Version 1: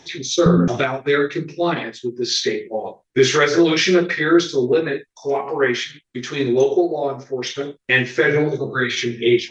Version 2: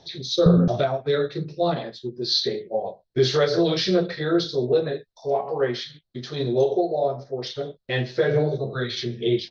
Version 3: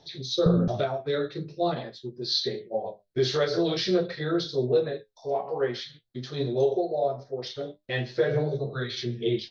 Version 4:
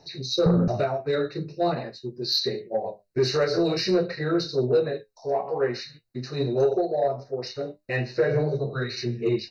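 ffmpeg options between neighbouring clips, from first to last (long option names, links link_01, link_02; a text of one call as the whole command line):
ffmpeg -i in.wav -af "firequalizer=gain_entry='entry(160,0);entry(280,-10);entry(620,3);entry(880,-7);entry(2300,-17);entry(4200,2);entry(6800,-19)':delay=0.05:min_phase=1" out.wav
ffmpeg -i in.wav -af "flanger=delay=6.7:depth=4:regen=65:speed=0.46:shape=triangular" out.wav
ffmpeg -i in.wav -af "asoftclip=type=tanh:threshold=-14.5dB,asuperstop=centerf=3300:order=20:qfactor=4.3,volume=3dB" out.wav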